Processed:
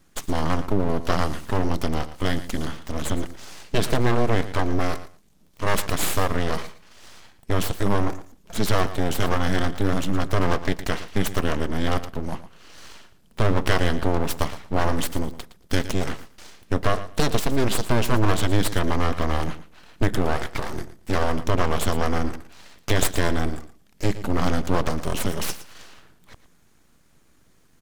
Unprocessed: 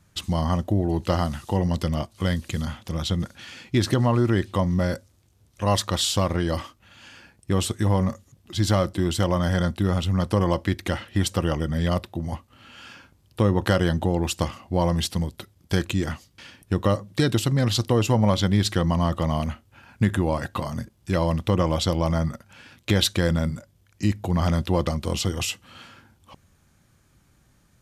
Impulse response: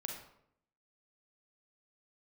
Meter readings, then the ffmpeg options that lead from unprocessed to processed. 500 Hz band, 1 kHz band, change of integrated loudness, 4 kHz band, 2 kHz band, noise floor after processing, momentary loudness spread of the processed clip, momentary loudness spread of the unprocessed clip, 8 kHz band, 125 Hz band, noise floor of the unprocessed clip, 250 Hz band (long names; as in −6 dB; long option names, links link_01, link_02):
0.0 dB, +2.0 dB, −1.5 dB, −2.5 dB, +4.0 dB, −57 dBFS, 10 LU, 10 LU, +0.5 dB, −3.5 dB, −61 dBFS, −2.0 dB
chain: -af "aeval=exprs='abs(val(0))':channel_layout=same,aecho=1:1:114|228:0.2|0.0339,volume=2.5dB"